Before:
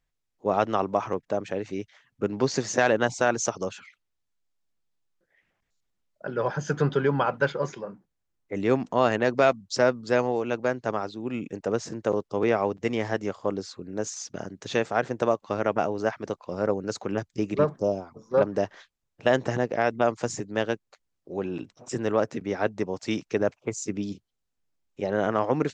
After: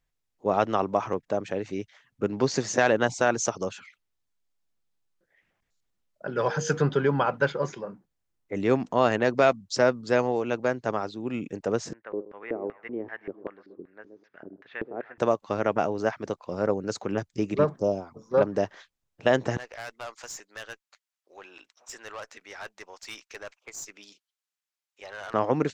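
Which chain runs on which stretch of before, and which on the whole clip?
6.35–6.77 high shelf 2200 Hz +9 dB + whine 470 Hz -34 dBFS
11.93–15.18 dark delay 0.127 s, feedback 40%, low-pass 2900 Hz, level -16 dB + LFO band-pass square 2.6 Hz 350–1800 Hz + air absorption 350 m
19.57–25.34 HPF 1200 Hz + tube stage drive 32 dB, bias 0.3
whole clip: dry

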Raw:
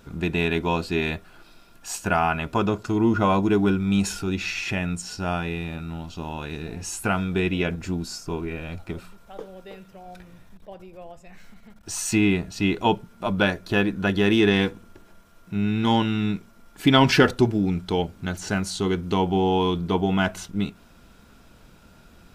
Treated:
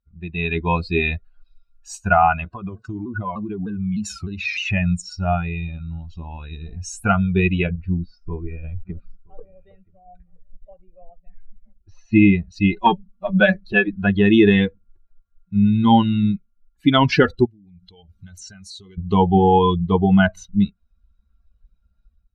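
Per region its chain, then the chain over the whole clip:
2.45–4.7 HPF 67 Hz + compressor 10:1, threshold -25 dBFS + shaped vibrato saw down 3.3 Hz, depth 160 cents
7.67–12.16 air absorption 270 m + echo 0.973 s -15.5 dB
12.72–13.88 notches 50/100/150/200/250/300 Hz + comb 5.3 ms, depth 54% + core saturation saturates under 450 Hz
17.45–18.98 high shelf 2100 Hz +8.5 dB + compressor 8:1, threshold -33 dBFS
whole clip: per-bin expansion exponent 2; Bessel low-pass 3400 Hz, order 2; AGC gain up to 15.5 dB; gain -1 dB

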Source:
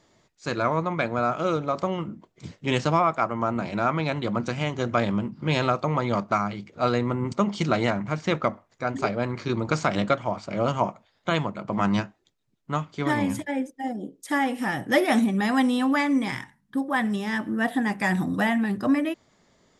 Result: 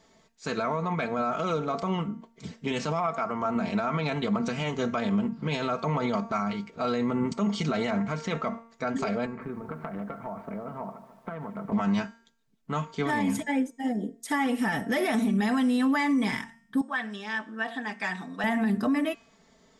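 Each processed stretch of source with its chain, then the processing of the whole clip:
9.26–11.72 LPF 1700 Hz 24 dB/oct + compressor 12:1, threshold -32 dBFS + lo-fi delay 0.148 s, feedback 55%, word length 10-bit, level -13 dB
16.81–18.44 HPF 1400 Hz 6 dB/oct + air absorption 110 m + notch 2000 Hz, Q 20
whole clip: comb 4.5 ms, depth 64%; de-hum 229.8 Hz, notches 39; limiter -18.5 dBFS

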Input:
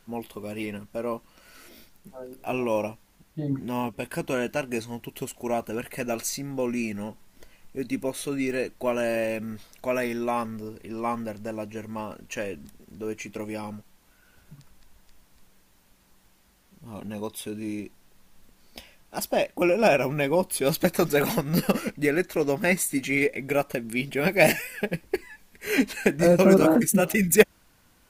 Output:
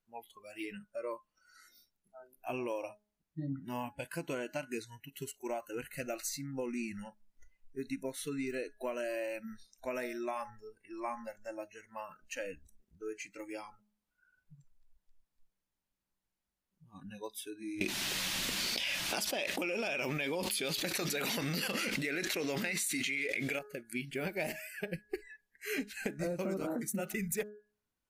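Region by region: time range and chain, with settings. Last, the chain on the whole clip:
17.81–23.59 weighting filter D + fast leveller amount 100%
whole clip: de-hum 209.5 Hz, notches 8; spectral noise reduction 22 dB; compressor 6:1, threshold -27 dBFS; gain -6.5 dB

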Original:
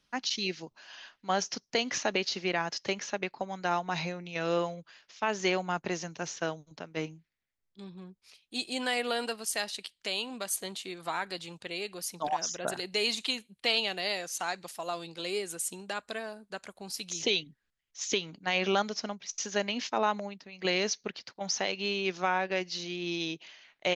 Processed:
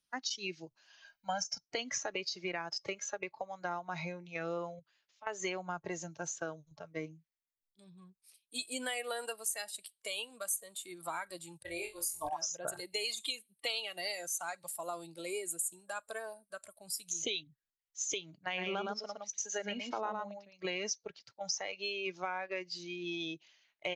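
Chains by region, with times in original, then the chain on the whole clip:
1.04–1.63 notch 3300 Hz, Q 10 + comb 1.3 ms, depth 87%
4.79–5.27 compressor 2:1, threshold -57 dBFS + bell 5700 Hz -6 dB 0.6 oct
11.63–12.29 resonant low shelf 120 Hz +12.5 dB, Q 3 + expander -45 dBFS + flutter echo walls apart 4 m, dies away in 0.34 s
18.34–20.53 HPF 44 Hz + high shelf 4500 Hz -4.5 dB + echo 0.114 s -3.5 dB
whole clip: spectral noise reduction 14 dB; high shelf 4900 Hz +12 dB; compressor 3:1, threshold -32 dBFS; gain -3 dB

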